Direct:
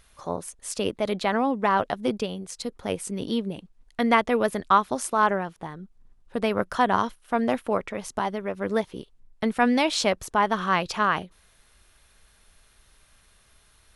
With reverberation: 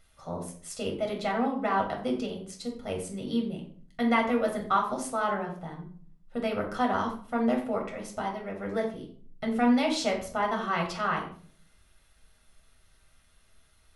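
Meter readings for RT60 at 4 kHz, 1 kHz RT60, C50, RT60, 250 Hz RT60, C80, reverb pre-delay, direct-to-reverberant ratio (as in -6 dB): 0.35 s, 0.45 s, 7.5 dB, 0.50 s, 0.70 s, 11.5 dB, 8 ms, 0.5 dB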